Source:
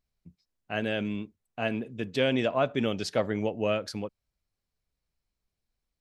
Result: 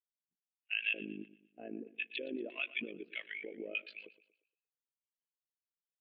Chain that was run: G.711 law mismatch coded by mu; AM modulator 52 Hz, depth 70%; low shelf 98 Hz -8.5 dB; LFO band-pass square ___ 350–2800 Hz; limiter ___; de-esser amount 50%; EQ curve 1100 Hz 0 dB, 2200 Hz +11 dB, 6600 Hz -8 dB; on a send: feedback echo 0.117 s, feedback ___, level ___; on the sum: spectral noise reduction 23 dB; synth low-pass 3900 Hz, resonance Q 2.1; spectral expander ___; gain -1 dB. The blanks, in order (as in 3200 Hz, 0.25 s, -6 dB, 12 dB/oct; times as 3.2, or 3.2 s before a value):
1.6 Hz, -31.5 dBFS, 54%, -12 dB, 1.5:1